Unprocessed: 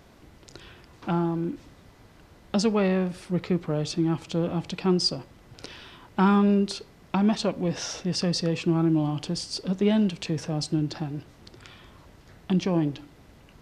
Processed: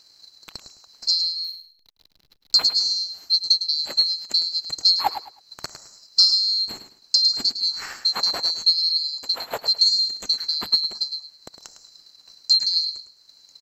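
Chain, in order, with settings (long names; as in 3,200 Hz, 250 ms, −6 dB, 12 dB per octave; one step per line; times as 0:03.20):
neighbouring bands swapped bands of 4,000 Hz
transient designer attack +10 dB, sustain −5 dB
0:01.44–0:02.66: slack as between gear wheels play −37.5 dBFS
0:12.60–0:12.85: gain on a spectral selection 410–1,500 Hz −8 dB
on a send: repeating echo 106 ms, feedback 25%, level −10.5 dB
on the sum: level −1 dB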